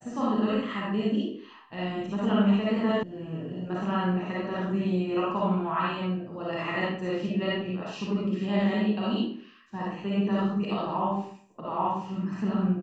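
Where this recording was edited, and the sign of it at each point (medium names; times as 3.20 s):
3.03 s: sound stops dead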